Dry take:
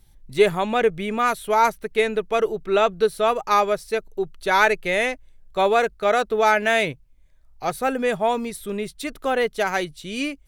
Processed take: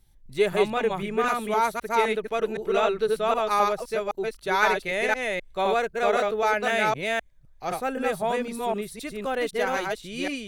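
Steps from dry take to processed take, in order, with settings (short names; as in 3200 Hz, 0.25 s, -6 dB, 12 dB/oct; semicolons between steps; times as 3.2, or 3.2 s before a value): reverse delay 0.257 s, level -1 dB; gain -6 dB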